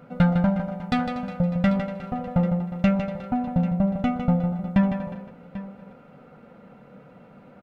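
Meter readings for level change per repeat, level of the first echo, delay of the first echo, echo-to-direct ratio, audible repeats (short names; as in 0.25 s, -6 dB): no steady repeat, -8.0 dB, 0.155 s, -7.5 dB, 2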